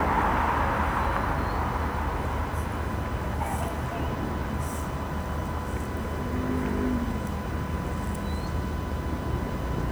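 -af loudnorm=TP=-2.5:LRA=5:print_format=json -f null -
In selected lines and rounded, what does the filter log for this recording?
"input_i" : "-29.6",
"input_tp" : "-11.2",
"input_lra" : "3.8",
"input_thresh" : "-39.6",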